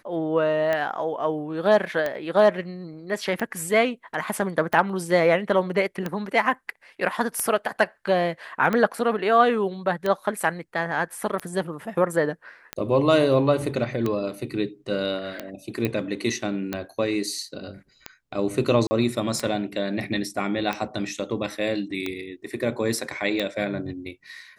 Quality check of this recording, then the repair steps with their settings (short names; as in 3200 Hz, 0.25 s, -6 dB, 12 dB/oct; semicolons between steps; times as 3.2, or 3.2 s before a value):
tick 45 rpm -13 dBFS
15.85 pop -12 dBFS
18.87–18.91 gap 40 ms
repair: de-click; interpolate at 18.87, 40 ms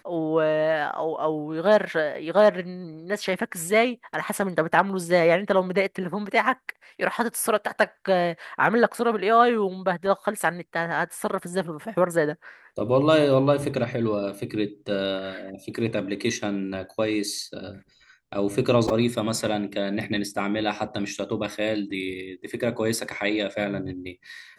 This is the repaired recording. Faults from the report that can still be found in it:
none